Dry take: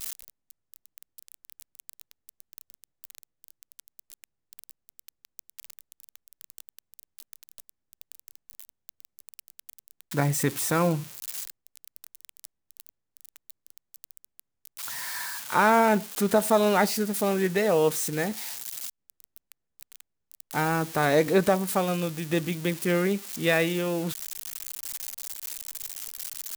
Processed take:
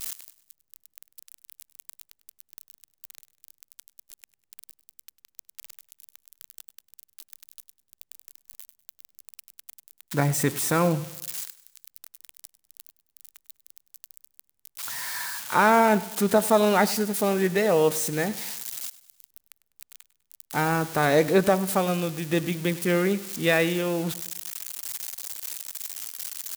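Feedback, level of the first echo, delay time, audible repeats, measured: 46%, -18.0 dB, 0.1 s, 3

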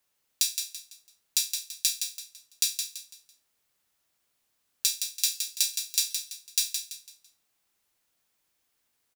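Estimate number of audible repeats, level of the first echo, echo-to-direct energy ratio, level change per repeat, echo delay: 4, -6.5 dB, -6.0 dB, -9.5 dB, 0.167 s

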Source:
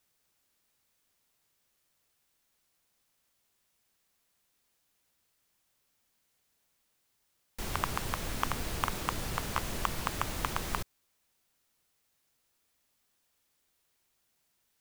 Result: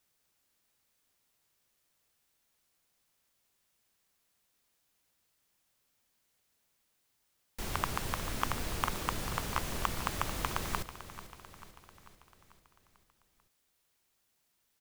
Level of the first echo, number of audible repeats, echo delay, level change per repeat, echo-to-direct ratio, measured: -13.5 dB, 5, 0.442 s, -5.0 dB, -12.0 dB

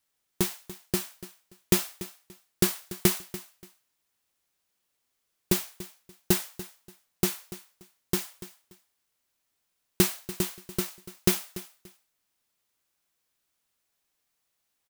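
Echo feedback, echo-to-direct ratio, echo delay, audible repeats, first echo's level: 23%, -16.0 dB, 0.289 s, 2, -16.0 dB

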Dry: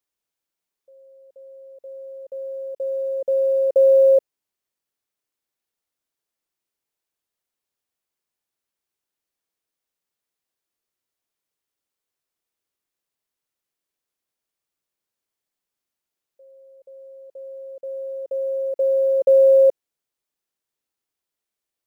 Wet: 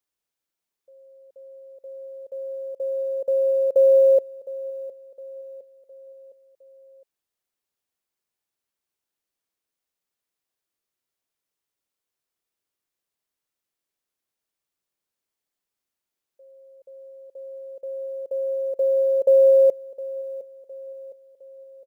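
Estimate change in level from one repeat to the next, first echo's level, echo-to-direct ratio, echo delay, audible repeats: -6.5 dB, -17.0 dB, -16.0 dB, 0.711 s, 3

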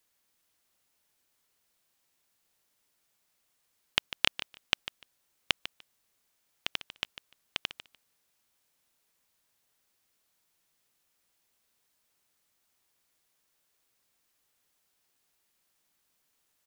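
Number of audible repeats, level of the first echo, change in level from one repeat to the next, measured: 2, -13.0 dB, -16.5 dB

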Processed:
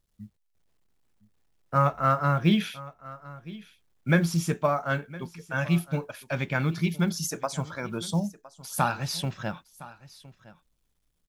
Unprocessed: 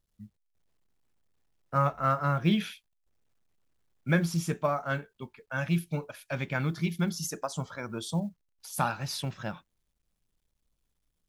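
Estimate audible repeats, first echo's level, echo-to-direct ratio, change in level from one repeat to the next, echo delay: 1, -19.0 dB, -19.0 dB, no steady repeat, 1.012 s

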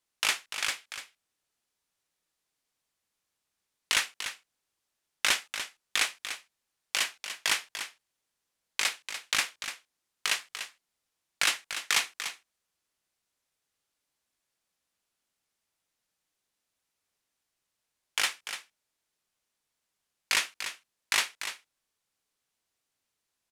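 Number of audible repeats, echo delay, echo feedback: 1, 0.293 s, no steady repeat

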